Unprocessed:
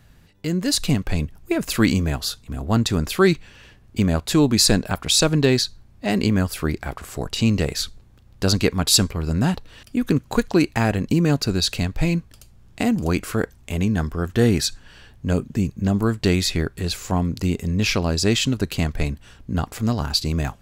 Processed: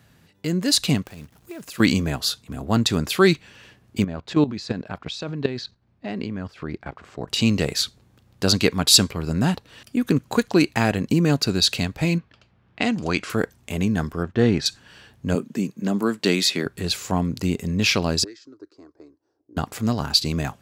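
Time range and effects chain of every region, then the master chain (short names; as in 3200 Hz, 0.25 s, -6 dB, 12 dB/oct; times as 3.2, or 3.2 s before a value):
1.05–1.8 compressor 3:1, threshold -38 dBFS + notch 2200 Hz, Q 24 + short-mantissa float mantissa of 2-bit
4.04–7.28 level quantiser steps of 14 dB + air absorption 170 m
12.18–13.3 LPF 5400 Hz + low-pass opened by the level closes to 2200 Hz, open at -17 dBFS + tilt shelf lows -4 dB, about 780 Hz
14.23–14.66 G.711 law mismatch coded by A + air absorption 140 m + mismatched tape noise reduction decoder only
15.35–16.66 HPF 180 Hz 24 dB/oct + notch 730 Hz, Q 11
18.24–19.57 EQ curve 100 Hz 0 dB, 200 Hz -16 dB, 310 Hz +13 dB, 540 Hz -5 dB, 850 Hz -19 dB, 1600 Hz -16 dB, 3000 Hz -23 dB, 5000 Hz +4 dB, 14000 Hz -22 dB + auto-wah 730–1800 Hz, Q 4.4, up, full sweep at -10.5 dBFS
whole clip: HPF 110 Hz 12 dB/oct; dynamic EQ 3600 Hz, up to +4 dB, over -33 dBFS, Q 0.97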